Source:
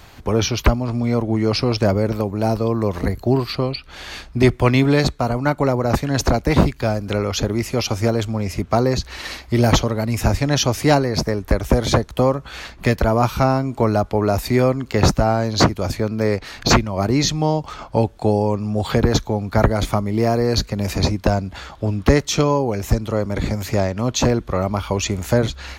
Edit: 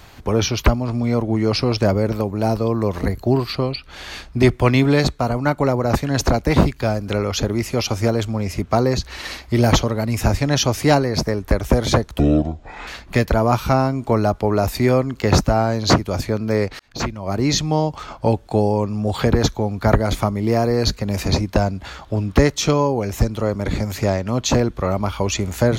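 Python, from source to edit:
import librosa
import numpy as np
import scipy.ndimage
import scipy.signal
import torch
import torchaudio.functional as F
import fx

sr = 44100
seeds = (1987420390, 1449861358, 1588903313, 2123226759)

y = fx.edit(x, sr, fx.speed_span(start_s=12.19, length_s=0.39, speed=0.57),
    fx.fade_in_span(start_s=16.5, length_s=0.75), tone=tone)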